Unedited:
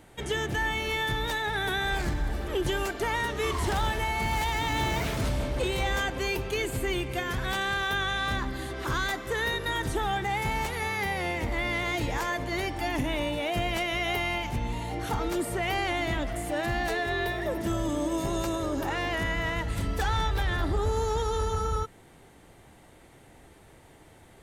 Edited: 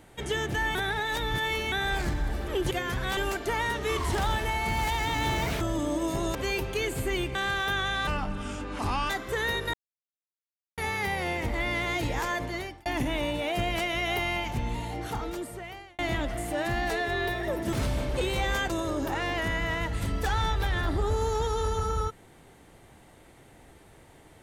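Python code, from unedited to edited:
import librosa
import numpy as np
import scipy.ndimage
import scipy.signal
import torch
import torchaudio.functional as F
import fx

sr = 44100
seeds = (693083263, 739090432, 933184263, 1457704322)

y = fx.edit(x, sr, fx.reverse_span(start_s=0.75, length_s=0.97),
    fx.swap(start_s=5.15, length_s=0.97, other_s=17.71, other_length_s=0.74),
    fx.move(start_s=7.12, length_s=0.46, to_s=2.71),
    fx.speed_span(start_s=8.3, length_s=0.78, speed=0.76),
    fx.silence(start_s=9.72, length_s=1.04),
    fx.fade_out_span(start_s=12.41, length_s=0.43),
    fx.fade_out_span(start_s=14.76, length_s=1.21), tone=tone)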